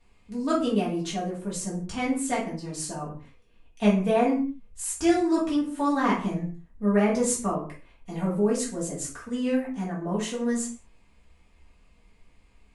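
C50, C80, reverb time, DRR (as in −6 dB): 7.0 dB, 12.0 dB, non-exponential decay, −8.0 dB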